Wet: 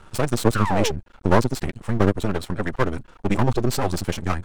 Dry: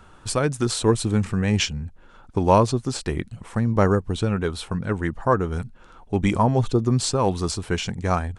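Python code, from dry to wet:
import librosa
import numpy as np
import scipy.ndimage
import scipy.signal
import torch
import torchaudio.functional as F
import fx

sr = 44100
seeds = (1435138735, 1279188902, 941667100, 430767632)

y = fx.spec_paint(x, sr, seeds[0], shape='fall', start_s=1.03, length_s=0.7, low_hz=380.0, high_hz=1500.0, level_db=-24.0)
y = fx.stretch_vocoder(y, sr, factor=0.53)
y = np.maximum(y, 0.0)
y = F.gain(torch.from_numpy(y), 4.5).numpy()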